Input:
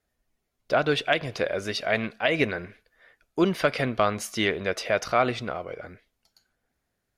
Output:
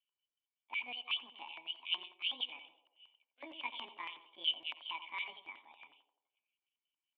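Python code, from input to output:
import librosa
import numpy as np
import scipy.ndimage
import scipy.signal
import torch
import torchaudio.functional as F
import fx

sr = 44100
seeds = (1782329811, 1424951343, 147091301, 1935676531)

y = fx.pitch_heads(x, sr, semitones=8.5)
y = fx.formant_cascade(y, sr, vowel='i')
y = fx.filter_lfo_highpass(y, sr, shape='square', hz=5.4, low_hz=970.0, high_hz=2900.0, q=5.1)
y = fx.echo_banded(y, sr, ms=86, feedback_pct=60, hz=540.0, wet_db=-8)
y = F.gain(torch.from_numpy(y), -1.5).numpy()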